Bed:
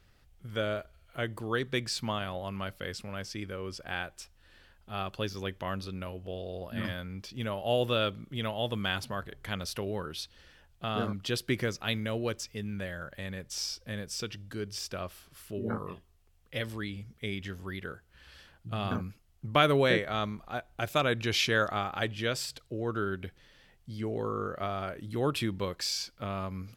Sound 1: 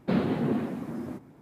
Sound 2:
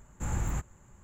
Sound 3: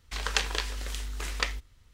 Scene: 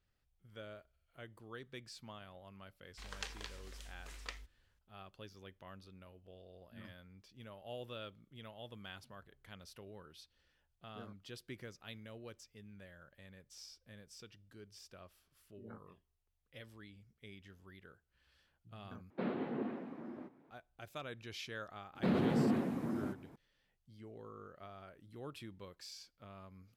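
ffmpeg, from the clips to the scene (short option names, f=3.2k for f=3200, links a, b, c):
-filter_complex "[1:a]asplit=2[a][b];[0:a]volume=-18.5dB[c];[a]acrossover=split=210 3700:gain=0.178 1 0.0794[d][e][f];[d][e][f]amix=inputs=3:normalize=0[g];[b]alimiter=limit=-21dB:level=0:latency=1:release=19[h];[c]asplit=2[i][j];[i]atrim=end=19.104[k];[g]atrim=end=1.41,asetpts=PTS-STARTPTS,volume=-9.5dB[l];[j]atrim=start=20.506[m];[3:a]atrim=end=1.93,asetpts=PTS-STARTPTS,volume=-17dB,afade=t=in:d=0.004:c=hsin,afade=t=out:st=1.926:d=0.004:c=hsin,adelay=2860[n];[h]atrim=end=1.41,asetpts=PTS-STARTPTS,volume=-3dB,afade=t=in:d=0.004:c=hsin,afade=t=out:st=1.406:d=0.004:c=hsin,adelay=21950[o];[k][l]acrossfade=d=0.004:c1=hsin:c2=hsin[p];[p][m]acrossfade=d=0.004:c1=hsin:c2=hsin[q];[q][n][o]amix=inputs=3:normalize=0"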